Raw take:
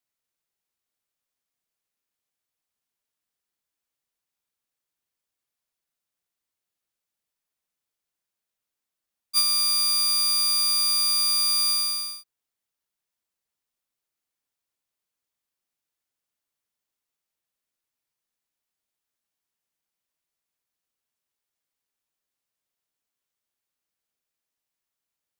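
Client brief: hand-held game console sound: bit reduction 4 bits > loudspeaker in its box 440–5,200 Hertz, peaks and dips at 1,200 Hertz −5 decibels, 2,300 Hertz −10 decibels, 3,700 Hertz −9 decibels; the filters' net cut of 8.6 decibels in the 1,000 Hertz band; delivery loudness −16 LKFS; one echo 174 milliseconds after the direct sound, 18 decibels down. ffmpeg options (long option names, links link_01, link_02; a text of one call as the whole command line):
ffmpeg -i in.wav -af "equalizer=frequency=1000:width_type=o:gain=-4.5,aecho=1:1:174:0.126,acrusher=bits=3:mix=0:aa=0.000001,highpass=440,equalizer=frequency=1200:width_type=q:width=4:gain=-5,equalizer=frequency=2300:width_type=q:width=4:gain=-10,equalizer=frequency=3700:width_type=q:width=4:gain=-9,lowpass=frequency=5200:width=0.5412,lowpass=frequency=5200:width=1.3066,volume=8.5dB" out.wav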